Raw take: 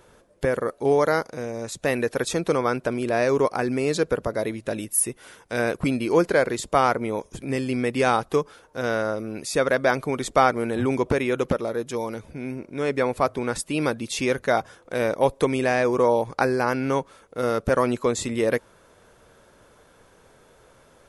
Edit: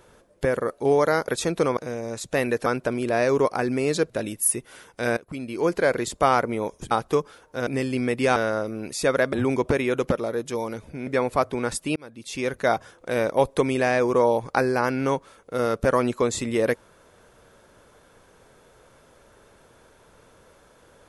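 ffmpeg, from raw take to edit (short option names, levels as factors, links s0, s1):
-filter_complex "[0:a]asplit=12[s0][s1][s2][s3][s4][s5][s6][s7][s8][s9][s10][s11];[s0]atrim=end=1.282[s12];[s1]atrim=start=2.168:end=2.662[s13];[s2]atrim=start=1.278:end=2.172[s14];[s3]atrim=start=2.658:end=4.102[s15];[s4]atrim=start=4.618:end=5.69,asetpts=PTS-STARTPTS,afade=t=out:st=1.068:d=0.004:c=hsin:silence=0.0794328[s16];[s5]atrim=start=5.69:end=7.432,asetpts=PTS-STARTPTS,afade=t=in:d=0.8:silence=0.0794328[s17];[s6]atrim=start=8.118:end=8.882[s18];[s7]atrim=start=7.428:end=8.122[s19];[s8]atrim=start=8.878:end=9.852[s20];[s9]atrim=start=10.738:end=12.482[s21];[s10]atrim=start=12.908:end=13.8,asetpts=PTS-STARTPTS,afade=t=out:st=0.888:d=0.004:c=hsin[s22];[s11]atrim=start=13.8,asetpts=PTS-STARTPTS,afade=t=in:d=0.74[s23];[s12][s13]acrossfade=d=0.004:c1=hsin:c2=hsin[s24];[s24][s14]acrossfade=d=0.004:c1=hsin:c2=hsin[s25];[s25][s15]acrossfade=d=0.004:c1=hsin:c2=hsin[s26];[s16][s17]concat=n=2:v=0:a=1[s27];[s26][s27]acrossfade=d=0.004:c1=hsin:c2=hsin[s28];[s28][s18]acrossfade=d=0.004:c1=hsin:c2=hsin[s29];[s29][s19]acrossfade=d=0.004:c1=hsin:c2=hsin[s30];[s30][s20]acrossfade=d=0.004:c1=hsin:c2=hsin[s31];[s31][s21]acrossfade=d=0.004:c1=hsin:c2=hsin[s32];[s22][s23]concat=n=2:v=0:a=1[s33];[s32][s33]acrossfade=d=0.004:c1=hsin:c2=hsin"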